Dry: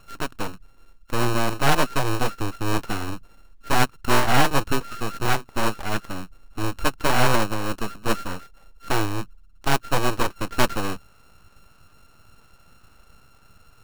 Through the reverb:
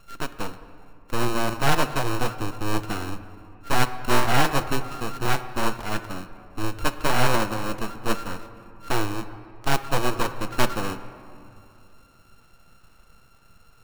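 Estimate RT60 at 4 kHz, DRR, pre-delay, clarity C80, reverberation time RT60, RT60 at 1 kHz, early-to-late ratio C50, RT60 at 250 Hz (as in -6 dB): 1.4 s, 10.5 dB, 4 ms, 13.0 dB, 2.7 s, 2.6 s, 12.0 dB, 3.0 s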